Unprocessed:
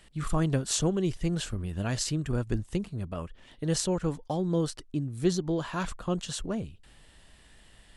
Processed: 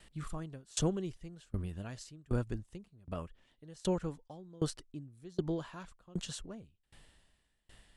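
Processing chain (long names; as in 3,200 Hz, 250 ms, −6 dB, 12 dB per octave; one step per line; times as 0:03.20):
tremolo with a ramp in dB decaying 1.3 Hz, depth 28 dB
level −1 dB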